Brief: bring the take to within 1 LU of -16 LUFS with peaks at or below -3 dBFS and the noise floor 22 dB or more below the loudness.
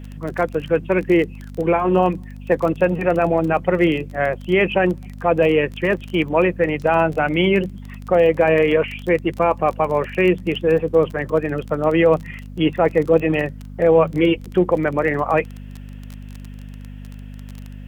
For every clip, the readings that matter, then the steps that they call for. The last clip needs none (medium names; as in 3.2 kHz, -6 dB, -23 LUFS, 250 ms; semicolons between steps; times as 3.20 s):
tick rate 23 per s; hum 50 Hz; highest harmonic 250 Hz; hum level -32 dBFS; loudness -19.0 LUFS; peak level -3.0 dBFS; loudness target -16.0 LUFS
-> de-click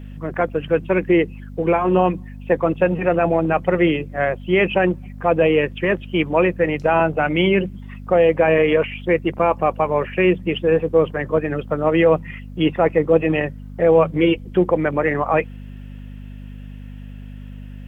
tick rate 0 per s; hum 50 Hz; highest harmonic 250 Hz; hum level -33 dBFS
-> de-hum 50 Hz, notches 5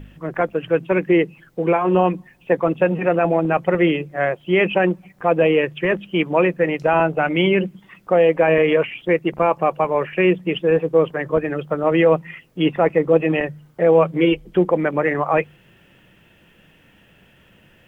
hum not found; loudness -19.0 LUFS; peak level -3.5 dBFS; loudness target -16.0 LUFS
-> trim +3 dB; peak limiter -3 dBFS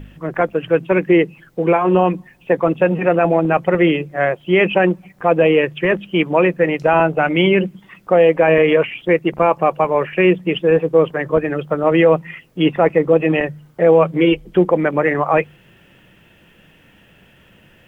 loudness -16.0 LUFS; peak level -3.0 dBFS; noise floor -51 dBFS